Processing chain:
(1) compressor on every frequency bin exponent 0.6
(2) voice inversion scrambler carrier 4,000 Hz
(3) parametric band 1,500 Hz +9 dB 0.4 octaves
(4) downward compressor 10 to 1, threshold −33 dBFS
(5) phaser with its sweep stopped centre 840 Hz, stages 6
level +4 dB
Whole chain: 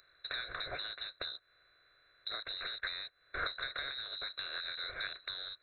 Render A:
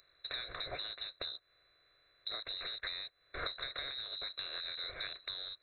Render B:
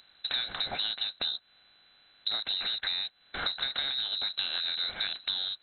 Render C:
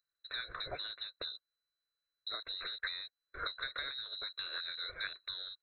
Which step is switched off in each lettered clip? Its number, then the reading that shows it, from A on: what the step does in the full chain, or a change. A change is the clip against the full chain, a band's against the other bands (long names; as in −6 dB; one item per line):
3, 2 kHz band −5.5 dB
5, 4 kHz band +7.5 dB
1, 4 kHz band +1.5 dB